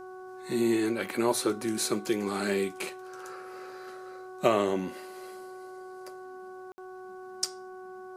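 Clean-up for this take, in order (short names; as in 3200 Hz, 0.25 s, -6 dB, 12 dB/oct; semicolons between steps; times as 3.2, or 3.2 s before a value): de-hum 372 Hz, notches 4; room tone fill 6.72–6.78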